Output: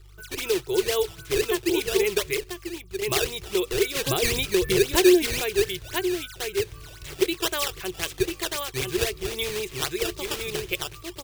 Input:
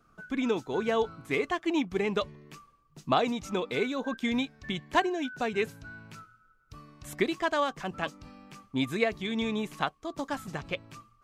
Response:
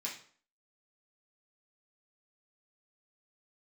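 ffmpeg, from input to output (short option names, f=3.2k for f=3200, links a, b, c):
-filter_complex "[0:a]asplit=2[a][b];[b]aecho=0:1:993:0.631[c];[a][c]amix=inputs=2:normalize=0,asettb=1/sr,asplit=3[d][e][f];[d]atrim=end=2.384[g];[e]atrim=start=2.38:end=3.02,asetpts=PTS-STARTPTS,afade=t=in:d=0.004:c=qsin,afade=t=out:st=0.636:d=0.004:c=qsin,acompressor=threshold=-36dB:ratio=6[h];[f]atrim=start=3.016[i];[g][h]acrossfade=d=0.004:c1=hsin:c2=qsin[j];[j][i]acrossfade=d=0.004:c1=qsin:c2=hsin,asplit=2[k][l];[l]alimiter=limit=-19.5dB:level=0:latency=1:release=115,volume=2.5dB[m];[k][m]amix=inputs=2:normalize=0,asettb=1/sr,asplit=3[n][o][p];[n]atrim=end=3.954[q];[o]atrim=start=3.95:end=5.4,asetpts=PTS-STARTPTS,afade=t=in:d=0.004:c=qsin,afade=t=out:st=1.446:d=0.004:c=qsin,lowshelf=f=410:g=11.5[r];[p]atrim=start=5.396[s];[q][r]acrossfade=d=0.004:c1=hsin:c2=qsin[t];[t][s]acrossfade=d=0.004:c1=qsin:c2=hsin,aeval=exprs='val(0)+0.00501*(sin(2*PI*50*n/s)+sin(2*PI*2*50*n/s)/2+sin(2*PI*3*50*n/s)/3+sin(2*PI*4*50*n/s)/4+sin(2*PI*5*50*n/s)/5)':c=same,acrusher=samples=12:mix=1:aa=0.000001:lfo=1:lforange=19.2:lforate=3.8,firequalizer=gain_entry='entry(110,0);entry(250,-27);entry(360,5);entry(550,-9);entry(800,-11);entry(2600,3)':delay=0.05:min_phase=1,volume=-1dB"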